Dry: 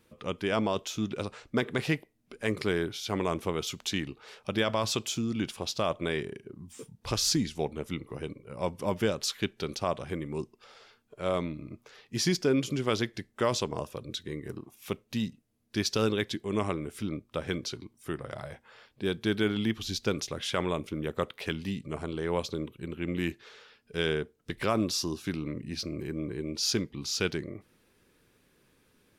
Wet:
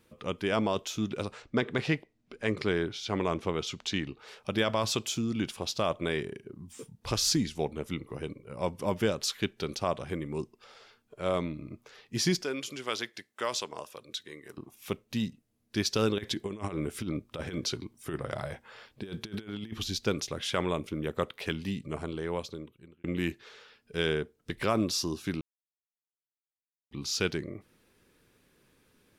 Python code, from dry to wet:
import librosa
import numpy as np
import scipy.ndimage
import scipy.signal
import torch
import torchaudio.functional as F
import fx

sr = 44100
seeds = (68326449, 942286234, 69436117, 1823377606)

y = fx.lowpass(x, sr, hz=6100.0, slope=12, at=(1.42, 4.19))
y = fx.highpass(y, sr, hz=1000.0, slope=6, at=(12.43, 14.58))
y = fx.over_compress(y, sr, threshold_db=-34.0, ratio=-0.5, at=(16.18, 19.84))
y = fx.edit(y, sr, fx.fade_out_span(start_s=21.98, length_s=1.06),
    fx.silence(start_s=25.41, length_s=1.5), tone=tone)